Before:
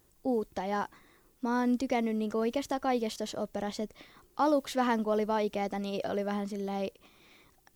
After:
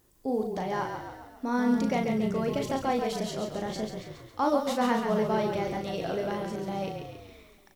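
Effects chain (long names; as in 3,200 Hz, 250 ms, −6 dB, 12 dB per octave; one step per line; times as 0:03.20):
double-tracking delay 37 ms −5.5 dB
echo with shifted repeats 137 ms, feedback 55%, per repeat −31 Hz, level −6 dB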